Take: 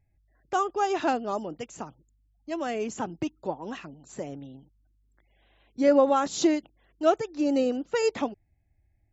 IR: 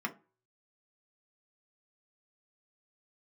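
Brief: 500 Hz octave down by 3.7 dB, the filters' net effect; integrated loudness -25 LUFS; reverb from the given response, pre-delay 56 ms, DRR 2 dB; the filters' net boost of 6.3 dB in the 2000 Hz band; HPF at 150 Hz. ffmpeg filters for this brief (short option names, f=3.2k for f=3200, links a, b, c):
-filter_complex "[0:a]highpass=150,equalizer=f=500:t=o:g=-5,equalizer=f=2k:t=o:g=8.5,asplit=2[a][b];[1:a]atrim=start_sample=2205,adelay=56[c];[b][c]afir=irnorm=-1:irlink=0,volume=-6.5dB[d];[a][d]amix=inputs=2:normalize=0,volume=2dB"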